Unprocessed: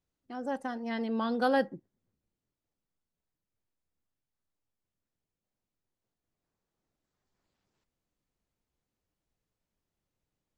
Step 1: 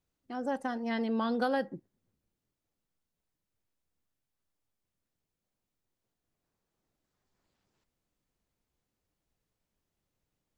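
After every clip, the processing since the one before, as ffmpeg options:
-af "acompressor=threshold=-28dB:ratio=5,volume=2dB"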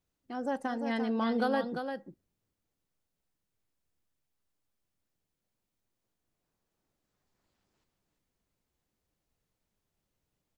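-af "aecho=1:1:346:0.447"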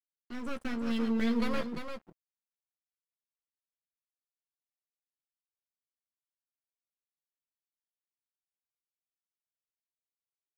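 -filter_complex "[0:a]acrossover=split=230|470|2100[a][b][c][d];[c]aeval=exprs='abs(val(0))':c=same[e];[a][b][e][d]amix=inputs=4:normalize=0,asplit=2[f][g];[g]adelay=13,volume=-5.5dB[h];[f][h]amix=inputs=2:normalize=0,aeval=exprs='sgn(val(0))*max(abs(val(0))-0.00355,0)':c=same"

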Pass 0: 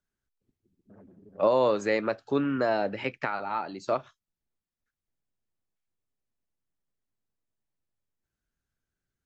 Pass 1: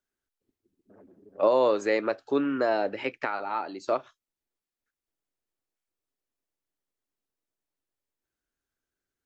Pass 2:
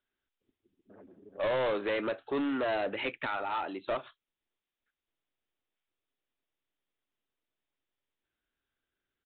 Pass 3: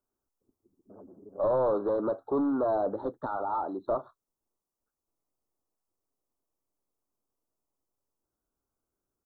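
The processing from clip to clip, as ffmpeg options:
-af "lowshelf=f=230:t=q:w=1.5:g=-7.5"
-af "crystalizer=i=3.5:c=0,aresample=8000,asoftclip=type=tanh:threshold=-27dB,aresample=44100"
-af "asuperstop=centerf=2500:order=8:qfactor=0.65,volume=4dB"

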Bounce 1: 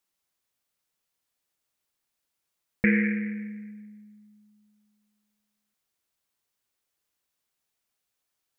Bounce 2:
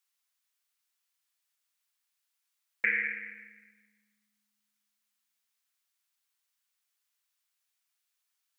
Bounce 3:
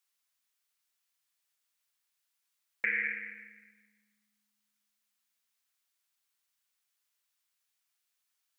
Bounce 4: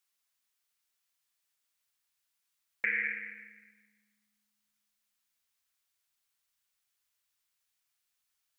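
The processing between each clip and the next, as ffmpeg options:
-af "highpass=1.2k"
-af "alimiter=limit=-16dB:level=0:latency=1:release=232"
-af "asubboost=boost=2:cutoff=140"

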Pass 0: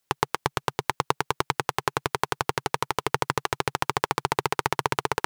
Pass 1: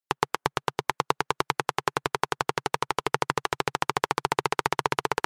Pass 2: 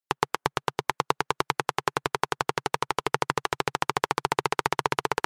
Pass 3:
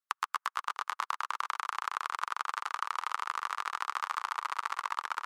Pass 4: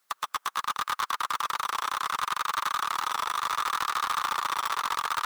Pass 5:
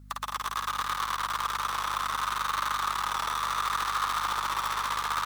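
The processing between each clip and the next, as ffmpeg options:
-af "afftdn=nr=19:nf=-45,equalizer=f=92:w=1.7:g=-8.5"
-af anull
-af "acompressor=threshold=-30dB:ratio=12,highpass=f=1.2k:t=q:w=4.5,aecho=1:1:130|247|352.3|447.1|532.4:0.631|0.398|0.251|0.158|0.1,volume=-4.5dB"
-filter_complex "[0:a]asplit=2[a][b];[b]acrusher=samples=11:mix=1:aa=0.000001:lfo=1:lforange=17.6:lforate=0.7,volume=-7dB[c];[a][c]amix=inputs=2:normalize=0,asplit=2[d][e];[e]highpass=f=720:p=1,volume=32dB,asoftclip=type=tanh:threshold=-12.5dB[f];[d][f]amix=inputs=2:normalize=0,lowpass=f=1.4k:p=1,volume=-6dB,crystalizer=i=5:c=0,volume=-6.5dB"
-filter_complex "[0:a]asplit=2[a][b];[b]aecho=0:1:52.48|212.8:0.708|0.562[c];[a][c]amix=inputs=2:normalize=0,aeval=exprs='val(0)+0.00562*(sin(2*PI*50*n/s)+sin(2*PI*2*50*n/s)/2+sin(2*PI*3*50*n/s)/3+sin(2*PI*4*50*n/s)/4+sin(2*PI*5*50*n/s)/5)':c=same,volume=-3dB"

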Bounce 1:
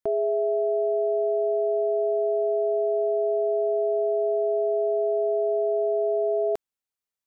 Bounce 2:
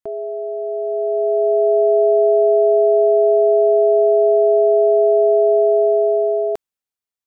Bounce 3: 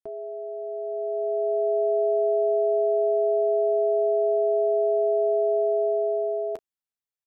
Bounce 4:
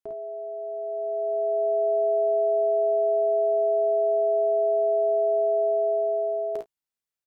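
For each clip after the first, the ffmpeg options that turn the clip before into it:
-af "dynaudnorm=f=280:g=9:m=13dB,volume=-2dB"
-af "aecho=1:1:11|34:0.299|0.133,volume=-8dB"
-af "aecho=1:1:35|52|69:0.266|0.631|0.211"

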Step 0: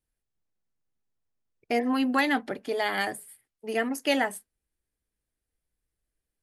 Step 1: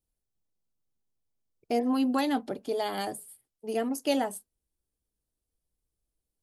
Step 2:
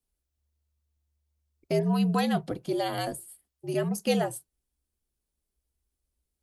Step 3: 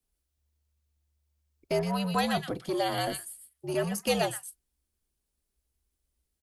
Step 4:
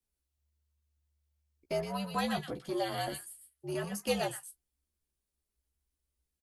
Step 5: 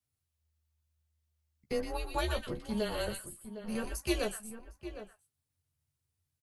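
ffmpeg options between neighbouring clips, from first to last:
-af "equalizer=f=1.9k:w=1.4:g=-14.5"
-af "afreqshift=-73,volume=1.5dB"
-filter_complex "[0:a]acrossover=split=490|1200[a][b][c];[a]asoftclip=type=tanh:threshold=-31.5dB[d];[c]aecho=1:1:121:0.596[e];[d][b][e]amix=inputs=3:normalize=0,volume=1.5dB"
-filter_complex "[0:a]asplit=2[a][b];[b]adelay=14,volume=-5dB[c];[a][c]amix=inputs=2:normalize=0,volume=-6.5dB"
-filter_complex "[0:a]asplit=2[a][b];[b]adelay=758,volume=-11dB,highshelf=f=4k:g=-17.1[c];[a][c]amix=inputs=2:normalize=0,afreqshift=-150"

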